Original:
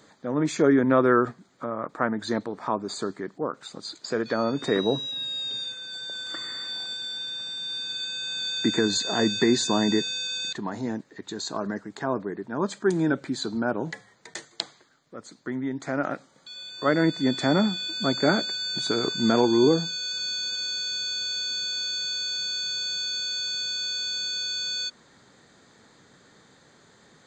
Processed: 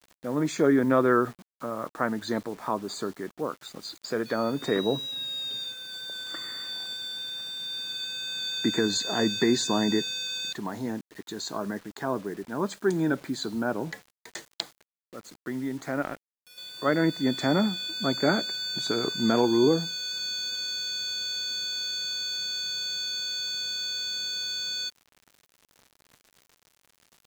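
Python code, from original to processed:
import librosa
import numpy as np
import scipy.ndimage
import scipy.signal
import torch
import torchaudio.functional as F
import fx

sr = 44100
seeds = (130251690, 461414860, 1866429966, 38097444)

y = fx.power_curve(x, sr, exponent=1.4, at=(16.02, 16.58))
y = fx.quant_dither(y, sr, seeds[0], bits=8, dither='none')
y = y * 10.0 ** (-2.0 / 20.0)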